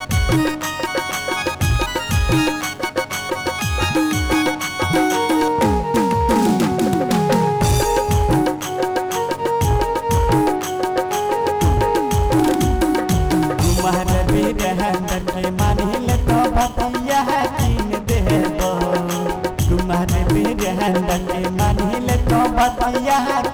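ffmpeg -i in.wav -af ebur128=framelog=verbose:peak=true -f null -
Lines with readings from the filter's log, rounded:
Integrated loudness:
  I:         -18.3 LUFS
  Threshold: -28.3 LUFS
Loudness range:
  LRA:         2.1 LU
  Threshold: -38.3 LUFS
  LRA low:   -19.3 LUFS
  LRA high:  -17.2 LUFS
True peak:
  Peak:       -9.3 dBFS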